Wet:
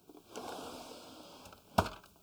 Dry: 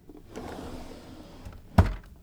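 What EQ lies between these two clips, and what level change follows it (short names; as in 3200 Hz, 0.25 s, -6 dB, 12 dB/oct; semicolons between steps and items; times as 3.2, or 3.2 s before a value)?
HPF 870 Hz 6 dB/oct; Butterworth band-stop 1900 Hz, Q 2; +1.5 dB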